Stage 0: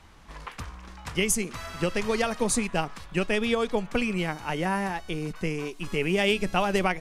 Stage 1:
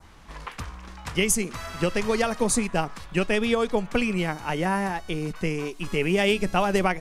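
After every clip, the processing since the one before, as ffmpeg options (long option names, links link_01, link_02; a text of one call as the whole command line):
ffmpeg -i in.wav -af "adynamicequalizer=threshold=0.00794:dfrequency=3000:dqfactor=1.2:tfrequency=3000:tqfactor=1.2:attack=5:release=100:ratio=0.375:range=2:mode=cutabove:tftype=bell,volume=2.5dB" out.wav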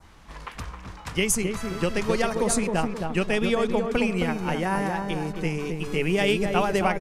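ffmpeg -i in.wav -filter_complex "[0:a]asplit=2[link_01][link_02];[link_02]adelay=266,lowpass=frequency=1000:poles=1,volume=-3.5dB,asplit=2[link_03][link_04];[link_04]adelay=266,lowpass=frequency=1000:poles=1,volume=0.47,asplit=2[link_05][link_06];[link_06]adelay=266,lowpass=frequency=1000:poles=1,volume=0.47,asplit=2[link_07][link_08];[link_08]adelay=266,lowpass=frequency=1000:poles=1,volume=0.47,asplit=2[link_09][link_10];[link_10]adelay=266,lowpass=frequency=1000:poles=1,volume=0.47,asplit=2[link_11][link_12];[link_12]adelay=266,lowpass=frequency=1000:poles=1,volume=0.47[link_13];[link_01][link_03][link_05][link_07][link_09][link_11][link_13]amix=inputs=7:normalize=0,volume=-1dB" out.wav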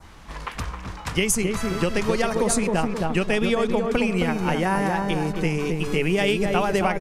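ffmpeg -i in.wav -af "acompressor=threshold=-24dB:ratio=3,volume=5.5dB" out.wav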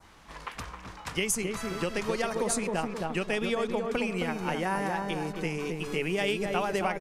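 ffmpeg -i in.wav -af "lowshelf=frequency=170:gain=-8.5,volume=-6dB" out.wav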